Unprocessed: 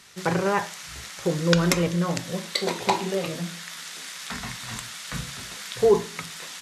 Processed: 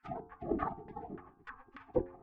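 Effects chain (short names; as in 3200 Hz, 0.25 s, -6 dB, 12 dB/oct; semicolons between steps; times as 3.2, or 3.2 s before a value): wide varispeed 2.97×; tone controls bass +12 dB, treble +2 dB; small resonant body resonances 620/940/1400/3900 Hz, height 17 dB, ringing for 70 ms; spectral gate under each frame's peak -30 dB weak; LFO low-pass saw down 3.4 Hz 290–1600 Hz; de-hum 89.31 Hz, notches 18; treble ducked by the level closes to 990 Hz, closed at -52 dBFS; gain +10 dB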